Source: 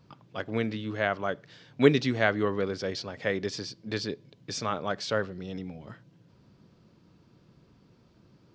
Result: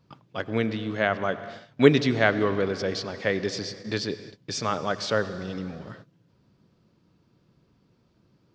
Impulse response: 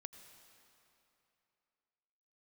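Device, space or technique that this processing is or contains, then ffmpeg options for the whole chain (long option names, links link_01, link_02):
keyed gated reverb: -filter_complex "[0:a]asplit=3[link_01][link_02][link_03];[1:a]atrim=start_sample=2205[link_04];[link_02][link_04]afir=irnorm=-1:irlink=0[link_05];[link_03]apad=whole_len=376974[link_06];[link_05][link_06]sidechaingate=range=-33dB:threshold=-51dB:ratio=16:detection=peak,volume=9.5dB[link_07];[link_01][link_07]amix=inputs=2:normalize=0,volume=-4.5dB"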